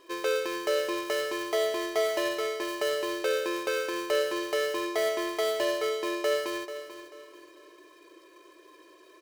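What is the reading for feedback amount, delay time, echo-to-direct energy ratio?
31%, 439 ms, -11.5 dB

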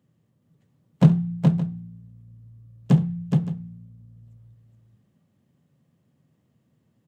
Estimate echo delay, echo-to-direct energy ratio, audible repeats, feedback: 68 ms, -3.5 dB, 3, no regular repeats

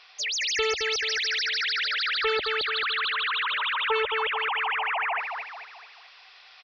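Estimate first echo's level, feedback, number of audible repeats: -5.5 dB, 43%, 5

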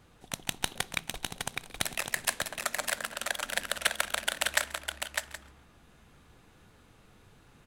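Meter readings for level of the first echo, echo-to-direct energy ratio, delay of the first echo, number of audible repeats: -22.5 dB, -4.5 dB, 134 ms, 5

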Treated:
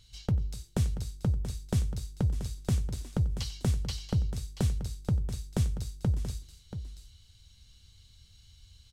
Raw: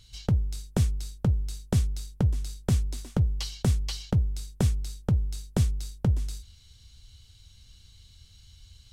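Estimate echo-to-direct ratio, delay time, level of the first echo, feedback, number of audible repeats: -10.0 dB, 92 ms, -18.0 dB, no regular repeats, 3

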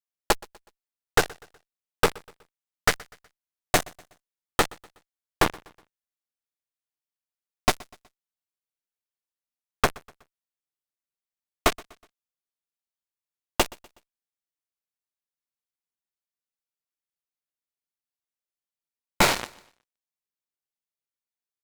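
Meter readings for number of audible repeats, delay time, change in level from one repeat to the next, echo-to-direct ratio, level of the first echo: 2, 123 ms, -7.5 dB, -22.5 dB, -23.5 dB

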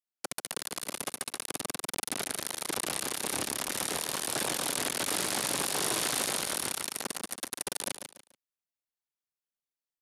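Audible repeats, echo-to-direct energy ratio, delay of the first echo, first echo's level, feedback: 3, -7.5 dB, 144 ms, -8.0 dB, 28%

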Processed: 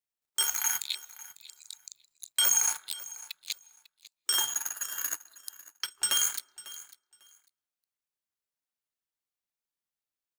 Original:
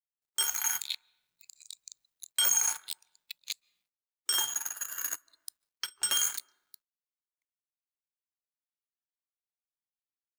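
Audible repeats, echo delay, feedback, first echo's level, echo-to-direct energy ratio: 2, 548 ms, 18%, -18.0 dB, -18.0 dB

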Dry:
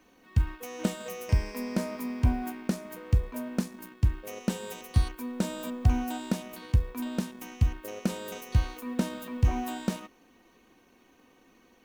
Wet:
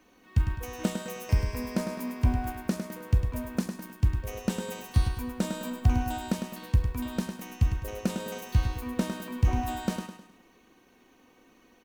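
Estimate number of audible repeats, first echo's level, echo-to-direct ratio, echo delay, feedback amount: 4, -7.5 dB, -6.5 dB, 104 ms, 40%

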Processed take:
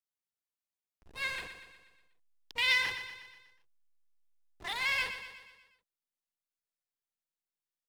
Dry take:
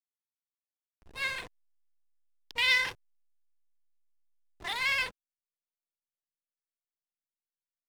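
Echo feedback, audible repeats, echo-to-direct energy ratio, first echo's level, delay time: 53%, 5, -8.5 dB, -10.0 dB, 121 ms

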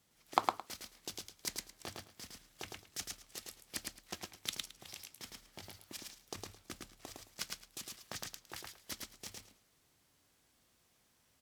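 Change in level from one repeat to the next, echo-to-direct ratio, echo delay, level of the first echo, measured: -15.0 dB, -3.0 dB, 109 ms, -3.0 dB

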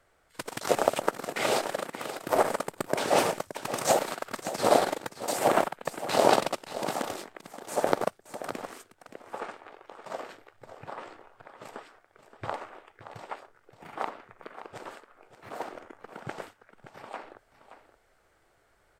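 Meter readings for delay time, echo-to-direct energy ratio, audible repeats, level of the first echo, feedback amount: 573 ms, -12.5 dB, 1, -12.5 dB, no regular repeats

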